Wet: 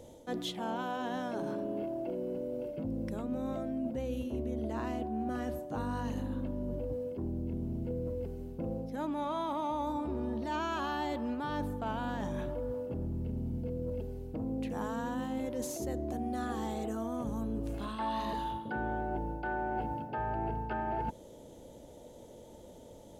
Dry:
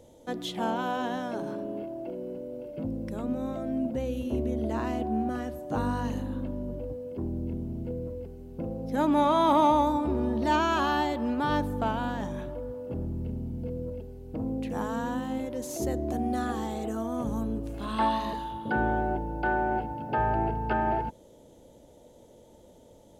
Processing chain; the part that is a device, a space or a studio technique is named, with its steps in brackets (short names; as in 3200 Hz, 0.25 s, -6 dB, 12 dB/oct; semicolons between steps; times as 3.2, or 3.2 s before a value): compression on the reversed sound (reverse; compressor 6:1, threshold -35 dBFS, peak gain reduction 16.5 dB; reverse); gain +2.5 dB